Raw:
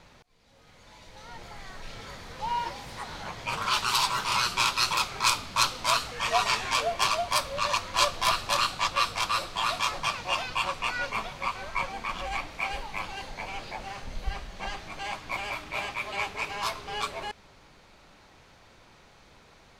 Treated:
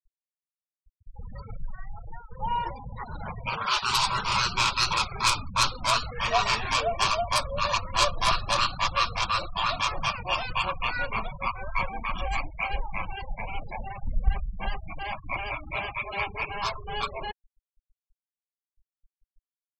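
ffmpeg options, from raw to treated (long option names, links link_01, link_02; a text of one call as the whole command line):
ffmpeg -i in.wav -filter_complex "[0:a]asettb=1/sr,asplit=3[link_01][link_02][link_03];[link_01]atrim=end=3.494[link_04];[link_02]atrim=start=3.49:end=3.89,asetpts=PTS-STARTPTS,afade=type=in:duration=0.004:curve=qsin,afade=type=out:start_time=0.396:duration=0.004:curve=qsin,lowshelf=frequency=170:gain=-9.5[link_05];[link_03]atrim=start=3.886[link_06];[link_04][link_05]acrossfade=duration=0.004:curve1=hsin:curve2=qsin[link_07];[link_07][link_06]acrossfade=duration=0.004:curve1=qsin:curve2=hsin,asettb=1/sr,asplit=3[link_08][link_09][link_10];[link_08]atrim=end=11.764[link_11];[link_09]atrim=start=11.76:end=12.52,asetpts=PTS-STARTPTS,afade=type=in:duration=0.004:curve=qsin,afade=type=out:start_time=0.756:duration=0.004:curve=qsin,lowpass=frequency=7200:width_type=q:width=2.5[link_12];[link_10]atrim=start=12.516[link_13];[link_11][link_12]acrossfade=duration=0.004:curve1=hsin:curve2=qsin[link_14];[link_14][link_13]acrossfade=duration=0.004:curve1=qsin:curve2=hsin,asplit=3[link_15][link_16][link_17];[link_15]atrim=end=1.192[link_18];[link_16]atrim=start=1.188:end=2.312,asetpts=PTS-STARTPTS,areverse[link_19];[link_17]atrim=start=2.308[link_20];[link_18][link_19]acrossfade=duration=0.004:curve1=hsin:curve2=hsin[link_21];[link_21][link_20]acrossfade=duration=0.004:curve1=hsin:curve2=hsin,afftfilt=real='re*gte(hypot(re,im),0.0224)':imag='im*gte(hypot(re,im),0.0224)':win_size=1024:overlap=0.75,lowshelf=frequency=170:gain=10,acontrast=84,volume=-6dB" out.wav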